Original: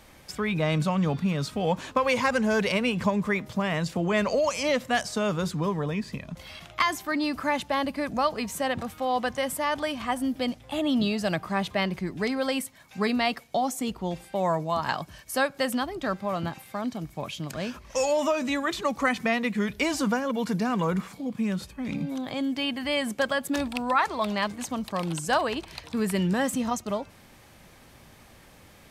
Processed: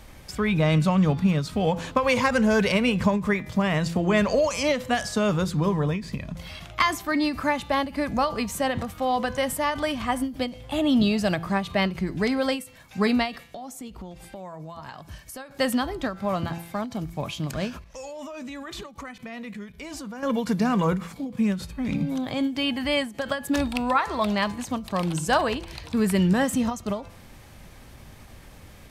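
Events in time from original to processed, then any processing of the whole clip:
13.45–15.51 compressor 4:1, threshold -41 dBFS
17.84–20.23 level quantiser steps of 20 dB
whole clip: low shelf 110 Hz +11 dB; de-hum 168.7 Hz, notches 28; ending taper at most 150 dB/s; gain +2.5 dB

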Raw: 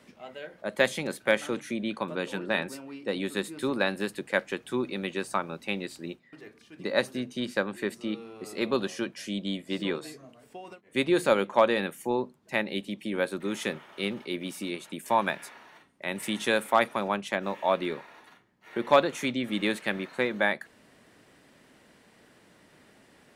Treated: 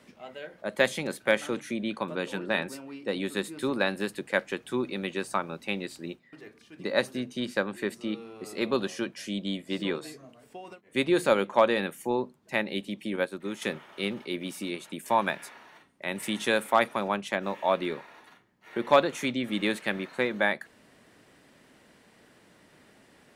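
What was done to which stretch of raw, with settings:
13.16–13.62 upward expander, over -38 dBFS

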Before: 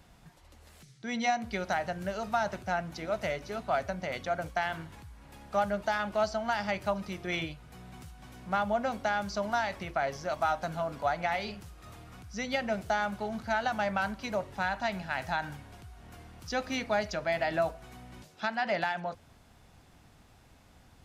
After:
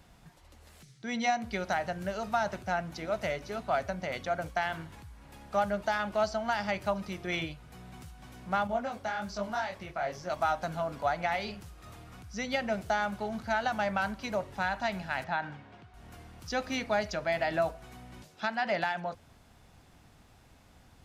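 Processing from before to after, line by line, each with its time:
8.67–10.3 detuned doubles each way 46 cents
15.24–15.94 BPF 130–3200 Hz

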